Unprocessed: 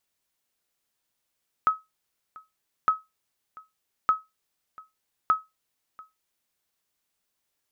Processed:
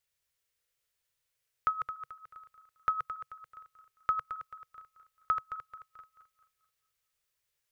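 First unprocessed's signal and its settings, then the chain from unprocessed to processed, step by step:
sonar ping 1280 Hz, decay 0.20 s, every 1.21 s, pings 4, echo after 0.69 s, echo -24 dB -12.5 dBFS
regenerating reverse delay 0.109 s, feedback 62%, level -7 dB; EQ curve 130 Hz 0 dB, 240 Hz -20 dB, 490 Hz -3 dB, 730 Hz -11 dB, 1900 Hz -2 dB, 3700 Hz -4 dB

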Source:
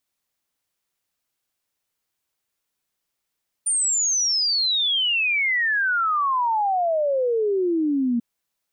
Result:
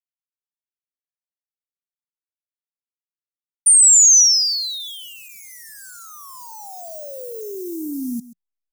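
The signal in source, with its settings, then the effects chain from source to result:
log sweep 9200 Hz -> 230 Hz 4.54 s -18.5 dBFS
level-crossing sampler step -39.5 dBFS; EQ curve 180 Hz 0 dB, 2200 Hz -29 dB, 6000 Hz +11 dB; echo 0.132 s -16.5 dB

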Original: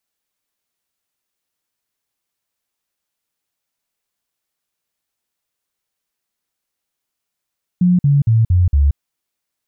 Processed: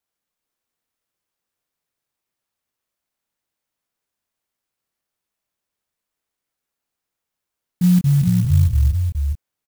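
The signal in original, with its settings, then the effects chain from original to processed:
stepped sine 179 Hz down, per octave 3, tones 5, 0.18 s, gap 0.05 s -9 dBFS
chorus 0.62 Hz, depth 2.5 ms; echo 0.418 s -5 dB; clock jitter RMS 0.076 ms

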